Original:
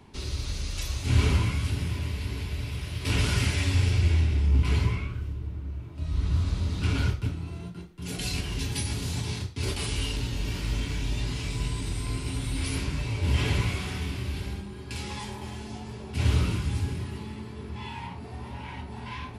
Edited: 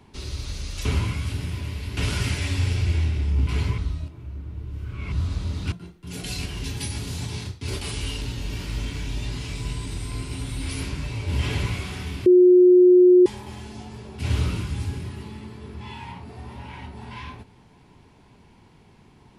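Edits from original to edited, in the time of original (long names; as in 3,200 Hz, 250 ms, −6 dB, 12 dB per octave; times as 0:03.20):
0:00.85–0:01.23: remove
0:02.35–0:03.13: remove
0:04.94–0:06.28: reverse
0:06.88–0:07.67: remove
0:14.21–0:15.21: beep over 361 Hz −9.5 dBFS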